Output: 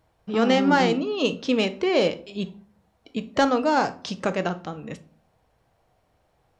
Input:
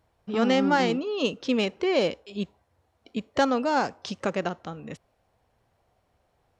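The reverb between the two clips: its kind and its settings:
rectangular room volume 350 cubic metres, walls furnished, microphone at 0.56 metres
level +2.5 dB

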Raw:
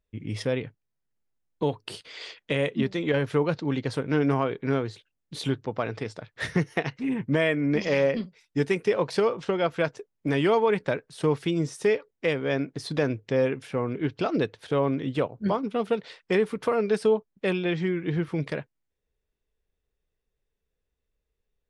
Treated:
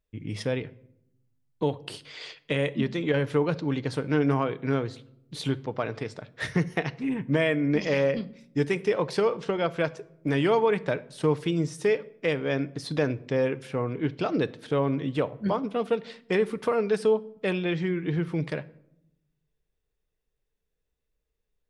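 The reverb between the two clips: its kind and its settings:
rectangular room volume 2,000 cubic metres, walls furnished, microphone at 0.47 metres
level −1 dB

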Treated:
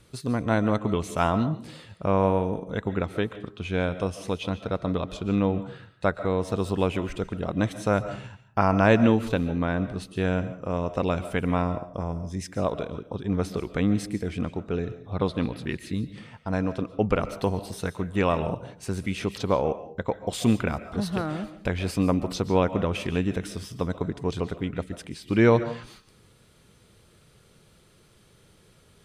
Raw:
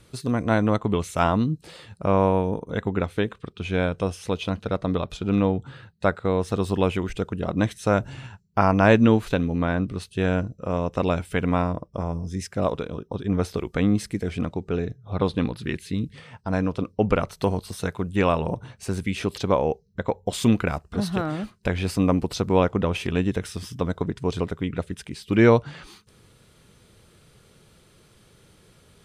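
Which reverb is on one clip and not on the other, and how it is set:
comb and all-pass reverb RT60 0.43 s, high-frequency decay 0.5×, pre-delay 100 ms, DRR 12.5 dB
level −2.5 dB

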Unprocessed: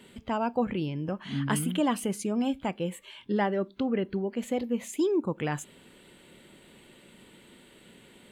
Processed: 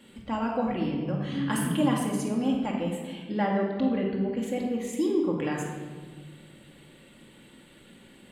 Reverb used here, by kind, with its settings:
rectangular room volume 1,400 cubic metres, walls mixed, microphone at 2.3 metres
level −3.5 dB

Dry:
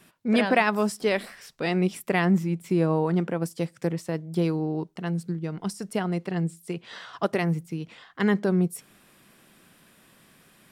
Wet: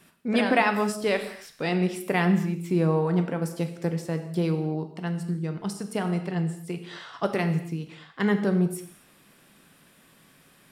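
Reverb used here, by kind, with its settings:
reverb whose tail is shaped and stops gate 290 ms falling, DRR 6.5 dB
level −1 dB

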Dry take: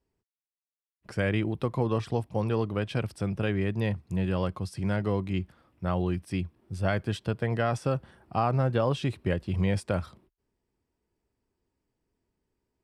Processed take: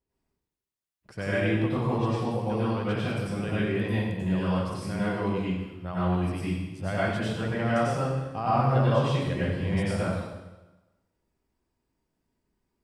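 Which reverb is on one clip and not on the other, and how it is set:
dense smooth reverb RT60 1.1 s, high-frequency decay 0.9×, pre-delay 80 ms, DRR −9.5 dB
level −7 dB

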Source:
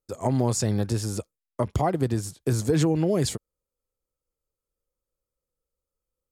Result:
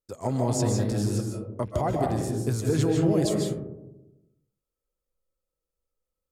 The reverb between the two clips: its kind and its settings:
comb and all-pass reverb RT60 0.98 s, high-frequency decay 0.25×, pre-delay 110 ms, DRR 0.5 dB
level −4 dB

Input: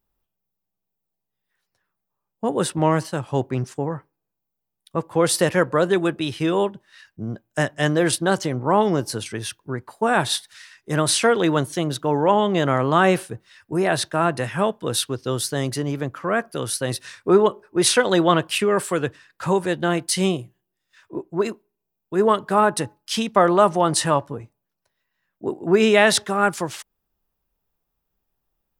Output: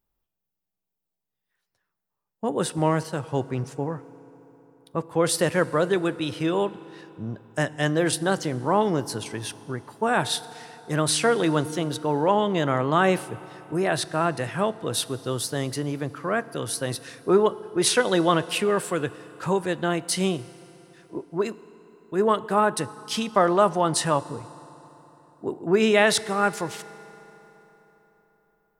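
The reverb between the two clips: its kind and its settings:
feedback delay network reverb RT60 4 s, high-frequency decay 0.65×, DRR 16.5 dB
level −3.5 dB

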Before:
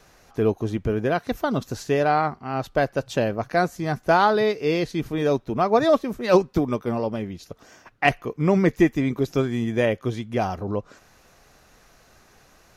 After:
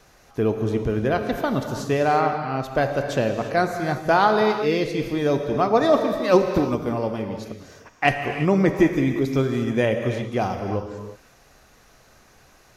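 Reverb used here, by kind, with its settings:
reverb whose tail is shaped and stops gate 380 ms flat, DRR 5 dB

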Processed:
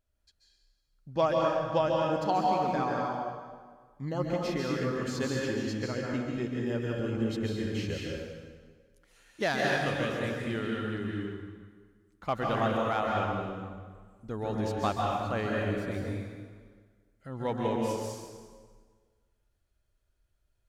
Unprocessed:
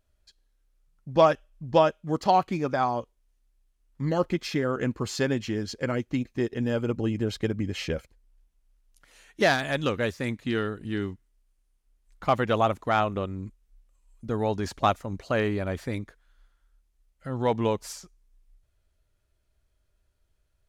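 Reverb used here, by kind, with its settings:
dense smooth reverb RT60 1.6 s, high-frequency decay 0.8×, pre-delay 120 ms, DRR −2.5 dB
level −8 dB

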